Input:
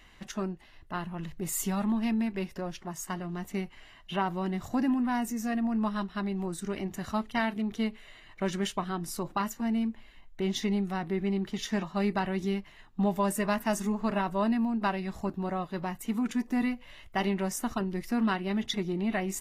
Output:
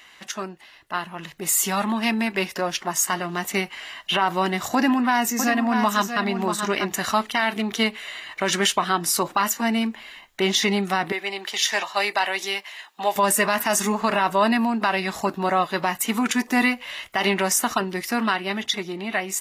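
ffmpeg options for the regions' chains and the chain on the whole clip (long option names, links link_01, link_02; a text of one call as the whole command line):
ffmpeg -i in.wav -filter_complex "[0:a]asettb=1/sr,asplit=3[link_01][link_02][link_03];[link_01]atrim=end=4.754[link_04];[link_02]atrim=start=4.75:end=6.86,asetpts=PTS-STARTPTS,afade=type=in:duration=0.004:curve=qsin,afade=type=out:start_time=2.106:duration=0.004:curve=qsin,equalizer=frequency=9600:width=3:gain=-9,agate=range=-33dB:threshold=-38dB:ratio=3:release=100:detection=peak,aecho=1:1:640:0.376,atrim=end_sample=93051[link_05];[link_03]atrim=start=6.856[link_06];[link_04][link_05]acrossfade=duration=0.004:curve1=hsin:curve2=qsin[link_07];[link_07][link_06]acrossfade=duration=0.004:curve1=qsin:curve2=hsin,asettb=1/sr,asplit=3[link_08][link_09][link_10];[link_08]atrim=end=11.124[link_11];[link_09]atrim=start=11.12:end=13.16,asetpts=PTS-STARTPTS,afade=type=in:duration=0.004:curve=qsin,afade=type=out:start_time=2.036:duration=0.004:curve=qsin,highpass=650,equalizer=frequency=1300:width_type=o:width=0.63:gain=-5.5[link_12];[link_10]atrim=start=13.156[link_13];[link_11][link_12]acrossfade=duration=0.004:curve1=hsin:curve2=qsin[link_14];[link_14][link_13]acrossfade=duration=0.004:curve1=qsin:curve2=hsin,highpass=frequency=1100:poles=1,dynaudnorm=framelen=390:gausssize=9:maxgain=8dB,alimiter=level_in=19.5dB:limit=-1dB:release=50:level=0:latency=1,volume=-8.5dB" out.wav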